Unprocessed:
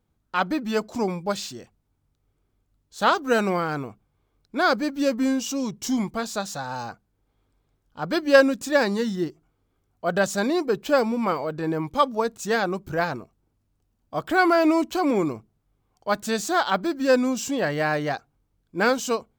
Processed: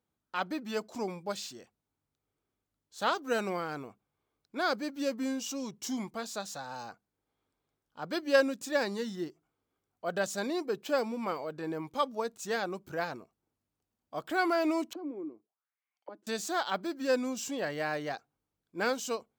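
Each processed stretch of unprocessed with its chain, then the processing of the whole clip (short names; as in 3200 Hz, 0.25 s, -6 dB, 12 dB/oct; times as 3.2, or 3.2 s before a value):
14.93–16.27 tilt shelf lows -4 dB, about 720 Hz + auto-wah 310–2400 Hz, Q 4.2, down, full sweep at -28 dBFS
whole clip: HPF 300 Hz 6 dB/oct; dynamic EQ 1200 Hz, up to -3 dB, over -35 dBFS, Q 0.83; gain -7 dB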